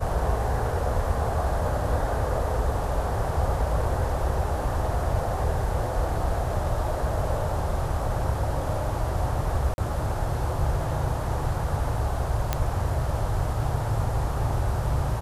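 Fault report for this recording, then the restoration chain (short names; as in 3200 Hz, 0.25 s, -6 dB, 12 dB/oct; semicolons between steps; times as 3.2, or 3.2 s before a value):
9.74–9.78 gap 41 ms
12.53 pop -9 dBFS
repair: de-click; interpolate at 9.74, 41 ms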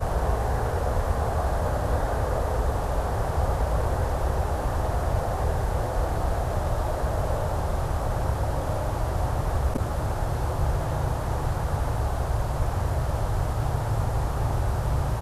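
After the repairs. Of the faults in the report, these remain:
none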